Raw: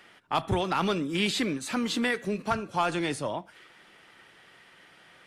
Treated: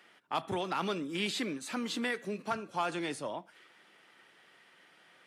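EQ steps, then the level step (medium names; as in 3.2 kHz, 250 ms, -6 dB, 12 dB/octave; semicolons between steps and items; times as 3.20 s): high-pass 180 Hz 12 dB/octave; -6.0 dB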